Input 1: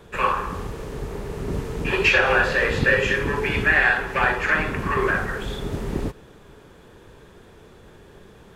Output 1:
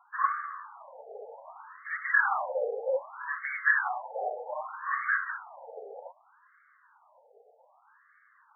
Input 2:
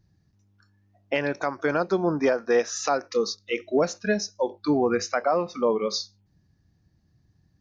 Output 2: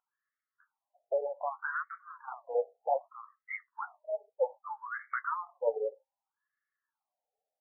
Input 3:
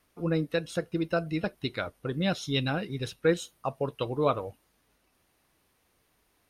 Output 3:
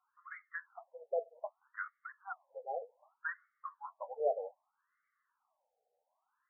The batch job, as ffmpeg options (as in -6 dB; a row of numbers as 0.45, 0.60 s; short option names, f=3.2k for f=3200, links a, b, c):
-af "flanger=delay=2.9:depth=9.6:regen=35:speed=0.93:shape=sinusoidal,aeval=exprs='val(0)+0.00316*sin(2*PI*4900*n/s)':c=same,afftfilt=real='re*between(b*sr/1024,590*pow(1600/590,0.5+0.5*sin(2*PI*0.64*pts/sr))/1.41,590*pow(1600/590,0.5+0.5*sin(2*PI*0.64*pts/sr))*1.41)':imag='im*between(b*sr/1024,590*pow(1600/590,0.5+0.5*sin(2*PI*0.64*pts/sr))/1.41,590*pow(1600/590,0.5+0.5*sin(2*PI*0.64*pts/sr))*1.41)':win_size=1024:overlap=0.75"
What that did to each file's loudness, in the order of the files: -8.5, -10.5, -12.0 LU